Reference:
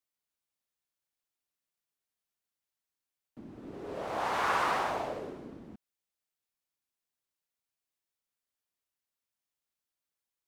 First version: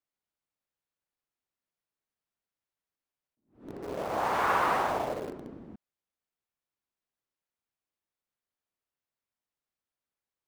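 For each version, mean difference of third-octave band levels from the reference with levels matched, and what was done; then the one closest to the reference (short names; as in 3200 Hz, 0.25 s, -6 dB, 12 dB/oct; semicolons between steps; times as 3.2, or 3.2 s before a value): 3.5 dB: high shelf 3100 Hz -11.5 dB; in parallel at -11 dB: requantised 6-bit, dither none; on the sum: attack slew limiter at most 160 dB/s; gain +2 dB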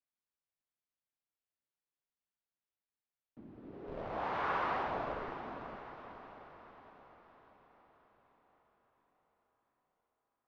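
5.5 dB: in parallel at -4.5 dB: Schmitt trigger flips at -33.5 dBFS; on the sum: air absorption 280 m; diffused feedback echo 0.557 s, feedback 54%, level -9.5 dB; gain -5 dB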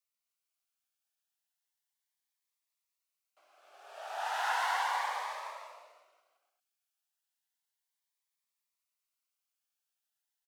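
14.0 dB: steep high-pass 680 Hz 36 dB/oct; on a send: bouncing-ball echo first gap 0.25 s, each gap 0.8×, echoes 5; on the sum: cascading phaser rising 0.34 Hz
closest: first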